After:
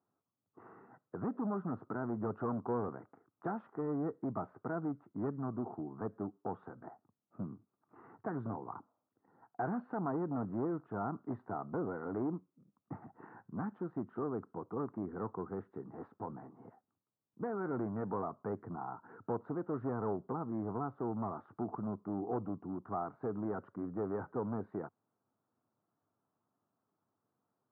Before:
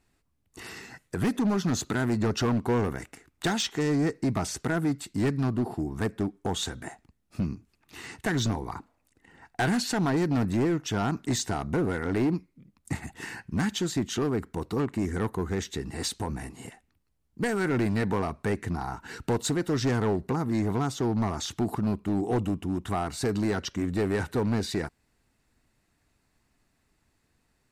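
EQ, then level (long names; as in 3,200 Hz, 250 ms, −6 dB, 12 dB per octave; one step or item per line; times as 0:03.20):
Chebyshev band-pass filter 100–1,300 Hz, order 4
low-shelf EQ 220 Hz −10.5 dB
−6.0 dB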